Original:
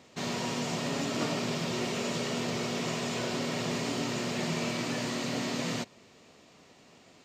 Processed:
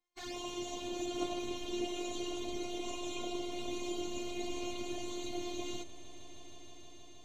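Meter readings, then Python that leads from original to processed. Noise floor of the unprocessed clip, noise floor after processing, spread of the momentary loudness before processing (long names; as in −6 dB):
−58 dBFS, −51 dBFS, 1 LU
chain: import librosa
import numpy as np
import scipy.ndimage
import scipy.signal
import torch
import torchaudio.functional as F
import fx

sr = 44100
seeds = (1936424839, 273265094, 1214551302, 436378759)

p1 = fx.bin_expand(x, sr, power=2.0)
p2 = fx.robotise(p1, sr, hz=353.0)
p3 = fx.env_flanger(p2, sr, rest_ms=3.8, full_db=-38.0)
p4 = p3 + fx.echo_swell(p3, sr, ms=157, loudest=5, wet_db=-16, dry=0)
y = F.gain(torch.from_numpy(p4), 2.5).numpy()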